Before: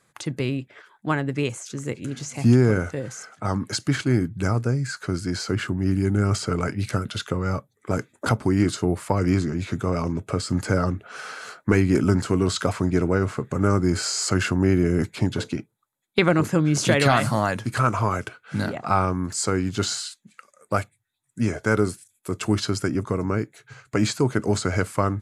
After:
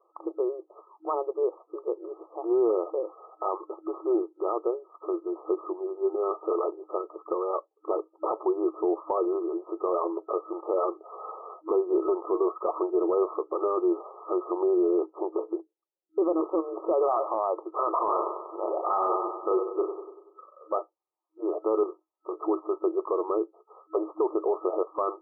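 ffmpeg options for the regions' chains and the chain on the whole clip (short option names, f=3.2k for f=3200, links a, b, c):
-filter_complex "[0:a]asettb=1/sr,asplit=3[a][b][c];[a]atrim=end=15.574[d];[b]atrim=start=15.57:end=16.41,asetpts=PTS-STARTPTS,afade=t=in:d=0.004:c=qsin,afade=t=out:st=0.836:d=0.004:c=qsin,equalizer=f=1.6k:t=o:w=2.2:g=-13,adynamicsmooth=sensitivity=6:basefreq=720[e];[c]atrim=start=16.406[f];[d][e]acrossfade=d=0.004:c1=hsin:c2=qsin[g];[g][f]acrossfade=d=0.004:c1=qsin:c2=hsin,asettb=1/sr,asplit=3[h][i][j];[h]atrim=end=17.984[k];[i]atrim=start=17.98:end=20.73,asetpts=PTS-STARTPTS,afade=t=in:d=0.004:c=qsin,afade=t=out:st=2.746:d=0.004:c=qsin,asplit=2[l][m];[m]adelay=37,volume=-5.5dB[n];[l][n]amix=inputs=2:normalize=0,atrim=end_sample=121275,aecho=1:1:96|192|288|384|480|576:0.335|0.181|0.0977|0.0527|0.0285|0.0154,atrim=end_sample=121275[o];[j]atrim=start=20.726[p];[k][o]acrossfade=d=0.004:c1=hsin:c2=qsin[q];[q][p]acrossfade=d=0.004:c1=qsin:c2=hsin,asettb=1/sr,asplit=3[r][s][t];[r]atrim=end=21.834[u];[s]atrim=start=21.83:end=22.46,asetpts=PTS-STARTPTS,afade=t=in:d=0.004:c=qsin,afade=t=out:st=0.626:d=0.004:c=qsin,acompressor=threshold=-26dB:ratio=5:attack=3.2:release=140:knee=1:detection=peak,asplit=2[v][w];[w]adelay=25,volume=-8dB[x];[v][x]amix=inputs=2:normalize=0,atrim=end_sample=27783[y];[t]atrim=start=22.456[z];[u][y]acrossfade=d=0.004:c1=hsin:c2=qsin[aa];[aa][z]acrossfade=d=0.004:c1=qsin:c2=hsin,afftfilt=real='re*between(b*sr/4096,320,1300)':imag='im*between(b*sr/4096,320,1300)':win_size=4096:overlap=0.75,alimiter=limit=-20dB:level=0:latency=1:release=14,volume=3dB"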